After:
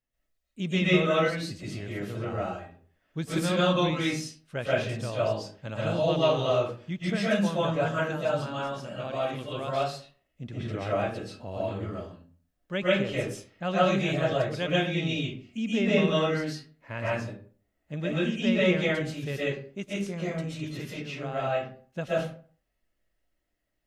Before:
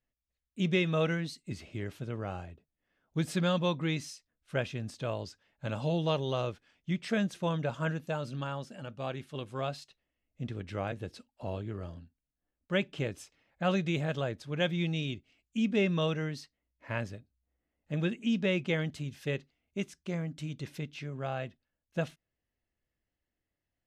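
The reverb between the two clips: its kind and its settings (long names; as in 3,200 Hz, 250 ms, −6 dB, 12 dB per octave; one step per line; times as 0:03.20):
comb and all-pass reverb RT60 0.46 s, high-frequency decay 0.6×, pre-delay 95 ms, DRR −8.5 dB
level −2 dB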